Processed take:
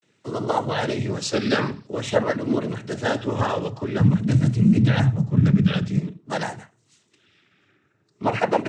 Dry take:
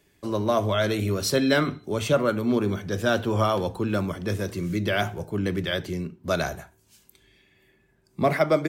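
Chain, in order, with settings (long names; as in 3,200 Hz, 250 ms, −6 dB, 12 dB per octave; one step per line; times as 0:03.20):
0:03.97–0:05.96: low shelf with overshoot 240 Hz +13.5 dB, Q 1.5
cochlear-implant simulation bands 12
pitch vibrato 0.49 Hz 90 cents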